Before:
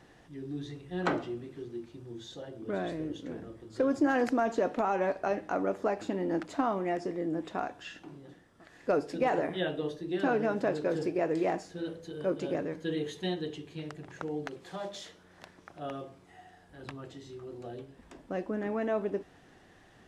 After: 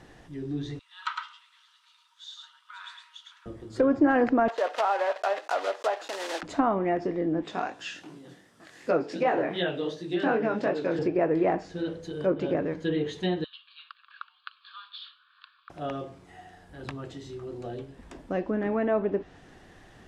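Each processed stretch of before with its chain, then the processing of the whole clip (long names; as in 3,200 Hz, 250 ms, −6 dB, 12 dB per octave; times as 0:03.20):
0:00.79–0:03.46: Chebyshev high-pass with heavy ripple 920 Hz, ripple 9 dB + single-tap delay 107 ms −3.5 dB
0:04.48–0:06.43: one scale factor per block 3 bits + high-pass filter 540 Hz 24 dB per octave + notch filter 2,300 Hz, Q 15
0:07.43–0:10.99: high-pass filter 130 Hz + high-shelf EQ 2,500 Hz +9 dB + chorus effect 2.7 Hz, delay 17 ms, depth 6.6 ms
0:13.44–0:15.70: Chebyshev band-pass filter 1,100–4,600 Hz, order 5 + phaser with its sweep stopped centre 2,000 Hz, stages 6
whole clip: treble cut that deepens with the level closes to 2,300 Hz, closed at −27 dBFS; low-shelf EQ 63 Hz +8 dB; level +5 dB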